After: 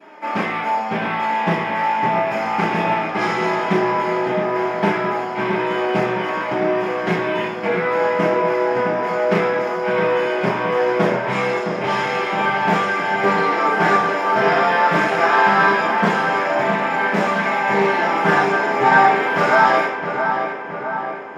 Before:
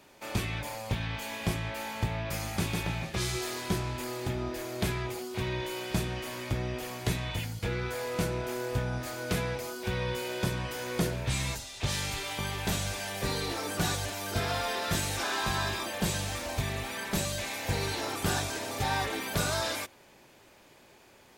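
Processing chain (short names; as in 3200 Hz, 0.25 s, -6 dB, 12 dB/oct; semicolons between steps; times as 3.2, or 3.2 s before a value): HPF 110 Hz; high shelf 11000 Hz -6 dB; in parallel at -6 dB: sample-rate reducer 6100 Hz, jitter 0%; on the sum: flange 0.12 Hz, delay 3 ms, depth 8.6 ms, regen +55%; darkening echo 0.665 s, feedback 64%, low-pass 2400 Hz, level -6.5 dB; reverb RT60 0.60 s, pre-delay 3 ms, DRR -21.5 dB; Doppler distortion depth 0.13 ms; gain -3.5 dB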